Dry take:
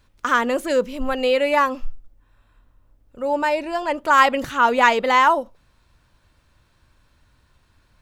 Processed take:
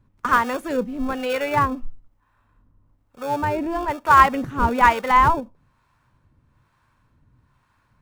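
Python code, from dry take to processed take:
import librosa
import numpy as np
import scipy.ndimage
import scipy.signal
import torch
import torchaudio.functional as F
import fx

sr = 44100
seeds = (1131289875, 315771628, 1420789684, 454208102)

p1 = fx.graphic_eq(x, sr, hz=(125, 250, 1000, 2000, 4000), db=(11, 7, 10, 4, -4))
p2 = fx.sample_hold(p1, sr, seeds[0], rate_hz=1000.0, jitter_pct=0)
p3 = p1 + (p2 * librosa.db_to_amplitude(-10.0))
p4 = fx.harmonic_tremolo(p3, sr, hz=1.1, depth_pct=70, crossover_hz=530.0)
p5 = fx.env_flatten(p4, sr, amount_pct=50, at=(3.43, 3.85))
y = p5 * librosa.db_to_amplitude(-6.5)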